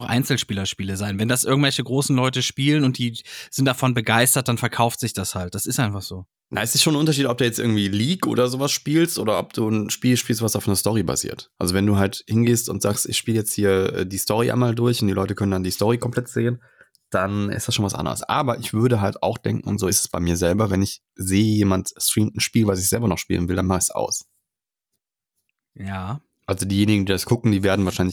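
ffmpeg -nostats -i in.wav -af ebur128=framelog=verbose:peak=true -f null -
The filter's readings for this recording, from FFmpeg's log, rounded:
Integrated loudness:
  I:         -21.0 LUFS
  Threshold: -31.2 LUFS
Loudness range:
  LRA:         3.3 LU
  Threshold: -41.4 LUFS
  LRA low:   -23.4 LUFS
  LRA high:  -20.1 LUFS
True peak:
  Peak:       -3.4 dBFS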